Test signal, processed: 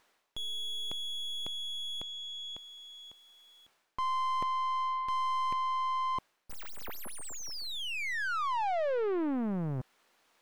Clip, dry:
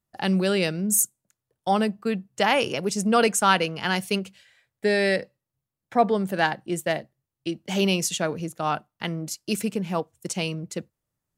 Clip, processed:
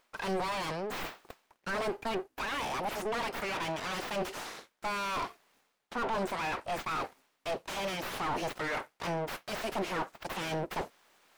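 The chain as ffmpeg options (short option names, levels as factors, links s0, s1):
-filter_complex "[0:a]bass=f=250:g=-7,treble=f=4000:g=10,areverse,acompressor=threshold=0.01:ratio=4,areverse,aeval=exprs='abs(val(0))':c=same,asplit=2[s0][s1];[s1]highpass=f=720:p=1,volume=63.1,asoftclip=type=tanh:threshold=0.075[s2];[s0][s2]amix=inputs=2:normalize=0,lowpass=f=1200:p=1,volume=0.501"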